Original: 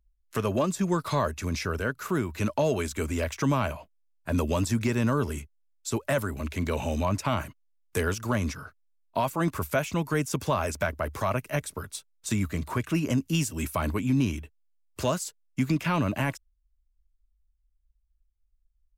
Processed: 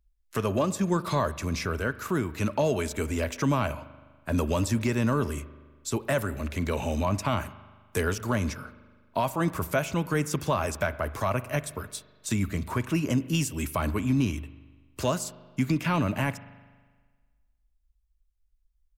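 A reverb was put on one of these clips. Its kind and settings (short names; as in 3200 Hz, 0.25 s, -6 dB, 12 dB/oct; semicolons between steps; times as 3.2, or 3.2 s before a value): spring tank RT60 1.5 s, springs 40 ms, chirp 30 ms, DRR 15.5 dB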